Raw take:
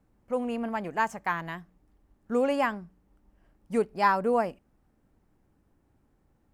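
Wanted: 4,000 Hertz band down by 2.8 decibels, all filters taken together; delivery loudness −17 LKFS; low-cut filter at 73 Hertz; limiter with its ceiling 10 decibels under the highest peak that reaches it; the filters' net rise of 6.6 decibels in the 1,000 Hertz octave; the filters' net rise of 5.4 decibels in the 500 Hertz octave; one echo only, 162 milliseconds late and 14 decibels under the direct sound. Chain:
high-pass filter 73 Hz
parametric band 500 Hz +4.5 dB
parametric band 1,000 Hz +6.5 dB
parametric band 4,000 Hz −5 dB
brickwall limiter −15.5 dBFS
single-tap delay 162 ms −14 dB
level +10 dB

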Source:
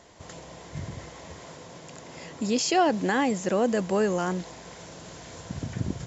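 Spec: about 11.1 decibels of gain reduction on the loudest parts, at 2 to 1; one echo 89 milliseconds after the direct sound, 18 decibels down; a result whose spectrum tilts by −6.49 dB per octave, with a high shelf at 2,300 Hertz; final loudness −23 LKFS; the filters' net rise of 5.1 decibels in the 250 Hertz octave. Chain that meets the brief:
parametric band 250 Hz +6.5 dB
high-shelf EQ 2,300 Hz −8.5 dB
downward compressor 2 to 1, threshold −38 dBFS
single-tap delay 89 ms −18 dB
level +13.5 dB

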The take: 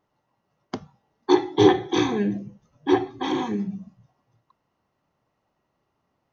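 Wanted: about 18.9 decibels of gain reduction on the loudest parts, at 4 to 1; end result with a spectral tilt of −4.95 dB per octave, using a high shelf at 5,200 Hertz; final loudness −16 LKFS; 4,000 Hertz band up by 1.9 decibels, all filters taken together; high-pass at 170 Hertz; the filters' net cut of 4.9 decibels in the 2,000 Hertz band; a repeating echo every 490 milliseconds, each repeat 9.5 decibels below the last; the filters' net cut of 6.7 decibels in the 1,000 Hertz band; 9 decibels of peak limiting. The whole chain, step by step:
high-pass filter 170 Hz
parametric band 1,000 Hz −8.5 dB
parametric band 2,000 Hz −4.5 dB
parametric band 4,000 Hz +3 dB
high-shelf EQ 5,200 Hz +3.5 dB
downward compressor 4 to 1, threshold −35 dBFS
brickwall limiter −30.5 dBFS
repeating echo 490 ms, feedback 33%, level −9.5 dB
level +26 dB

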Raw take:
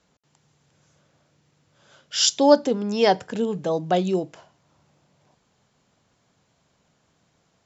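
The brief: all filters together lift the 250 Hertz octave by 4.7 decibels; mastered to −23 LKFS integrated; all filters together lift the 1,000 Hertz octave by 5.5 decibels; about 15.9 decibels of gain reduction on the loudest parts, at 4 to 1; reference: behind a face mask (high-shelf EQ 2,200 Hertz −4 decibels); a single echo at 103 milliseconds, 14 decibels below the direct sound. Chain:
parametric band 250 Hz +5.5 dB
parametric band 1,000 Hz +8 dB
downward compressor 4 to 1, threshold −24 dBFS
high-shelf EQ 2,200 Hz −4 dB
single-tap delay 103 ms −14 dB
level +5 dB

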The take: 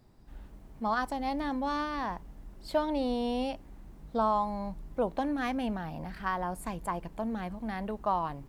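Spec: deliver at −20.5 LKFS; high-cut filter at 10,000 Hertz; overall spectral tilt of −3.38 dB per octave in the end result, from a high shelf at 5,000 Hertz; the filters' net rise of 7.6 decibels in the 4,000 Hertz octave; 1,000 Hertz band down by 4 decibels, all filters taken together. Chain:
low-pass filter 10,000 Hz
parametric band 1,000 Hz −5.5 dB
parametric band 4,000 Hz +7 dB
high-shelf EQ 5,000 Hz +6.5 dB
level +13.5 dB

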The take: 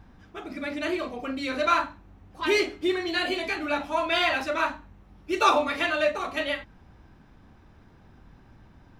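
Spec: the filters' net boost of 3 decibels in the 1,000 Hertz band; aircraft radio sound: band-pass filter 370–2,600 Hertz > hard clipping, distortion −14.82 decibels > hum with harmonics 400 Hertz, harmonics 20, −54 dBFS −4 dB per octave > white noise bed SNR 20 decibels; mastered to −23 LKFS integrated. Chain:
band-pass filter 370–2,600 Hz
parametric band 1,000 Hz +4 dB
hard clipping −15.5 dBFS
hum with harmonics 400 Hz, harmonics 20, −54 dBFS −4 dB per octave
white noise bed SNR 20 dB
level +3.5 dB

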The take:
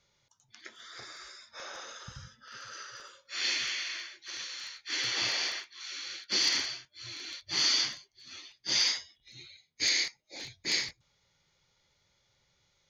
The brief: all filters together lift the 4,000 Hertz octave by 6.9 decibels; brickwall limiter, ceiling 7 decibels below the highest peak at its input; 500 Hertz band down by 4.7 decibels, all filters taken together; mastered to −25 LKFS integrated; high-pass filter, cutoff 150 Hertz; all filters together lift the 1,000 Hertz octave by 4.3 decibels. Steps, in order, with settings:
high-pass filter 150 Hz
parametric band 500 Hz −8.5 dB
parametric band 1,000 Hz +7 dB
parametric band 4,000 Hz +8 dB
level +2 dB
brickwall limiter −14 dBFS

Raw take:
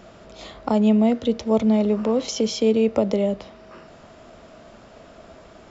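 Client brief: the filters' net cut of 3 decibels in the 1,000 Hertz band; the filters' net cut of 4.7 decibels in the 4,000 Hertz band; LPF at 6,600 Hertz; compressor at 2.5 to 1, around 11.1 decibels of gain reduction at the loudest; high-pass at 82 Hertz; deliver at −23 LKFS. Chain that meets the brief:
high-pass filter 82 Hz
low-pass filter 6,600 Hz
parametric band 1,000 Hz −4 dB
parametric band 4,000 Hz −5.5 dB
downward compressor 2.5 to 1, threshold −32 dBFS
level +9 dB

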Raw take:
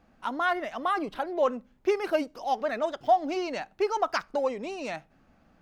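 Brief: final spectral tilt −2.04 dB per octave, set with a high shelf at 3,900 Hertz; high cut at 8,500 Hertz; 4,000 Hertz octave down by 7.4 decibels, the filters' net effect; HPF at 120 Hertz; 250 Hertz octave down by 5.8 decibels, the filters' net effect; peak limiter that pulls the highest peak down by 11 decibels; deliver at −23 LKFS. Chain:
high-pass filter 120 Hz
low-pass filter 8,500 Hz
parametric band 250 Hz −8.5 dB
high-shelf EQ 3,900 Hz −8.5 dB
parametric band 4,000 Hz −5 dB
level +12.5 dB
brickwall limiter −12 dBFS

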